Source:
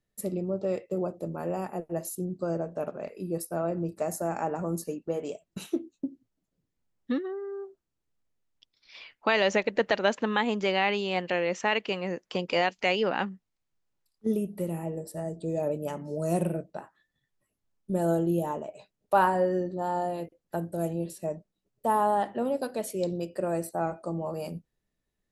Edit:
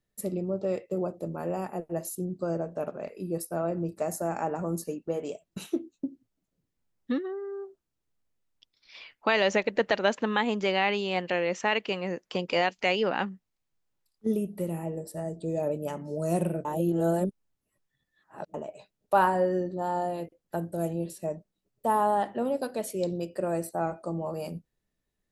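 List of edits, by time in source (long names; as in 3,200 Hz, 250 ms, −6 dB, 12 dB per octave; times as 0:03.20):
0:16.65–0:18.54: reverse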